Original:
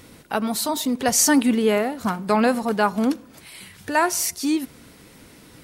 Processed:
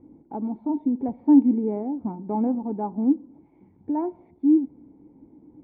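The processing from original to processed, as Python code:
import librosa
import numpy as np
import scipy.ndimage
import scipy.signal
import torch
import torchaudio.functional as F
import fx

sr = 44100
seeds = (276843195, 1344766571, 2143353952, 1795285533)

y = fx.formant_cascade(x, sr, vowel='u')
y = y * librosa.db_to_amplitude(5.0)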